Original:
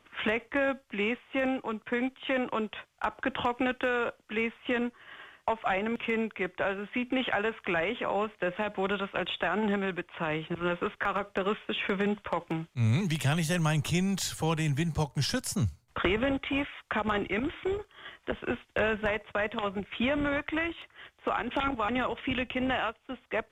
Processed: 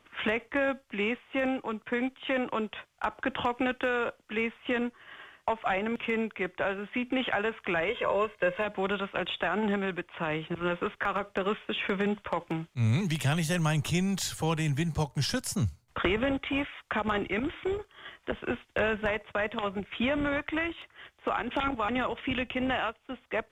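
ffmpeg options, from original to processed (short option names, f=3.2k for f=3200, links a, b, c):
-filter_complex "[0:a]asettb=1/sr,asplit=3[a][b][c];[a]atrim=end=7.884[d];[b]atrim=start=7.88:end=8.65,asetpts=PTS-STARTPTS,afade=t=in:d=0.004:c=qsin,afade=t=out:st=0.766:d=0.004:c=qsin,aecho=1:1:1.9:0.73,atrim=end_sample=33957[e];[c]atrim=start=8.646[f];[d][e]acrossfade=d=0.004:c1=hsin:c2=qsin[g];[g][f]acrossfade=d=0.004:c1=qsin:c2=hsin"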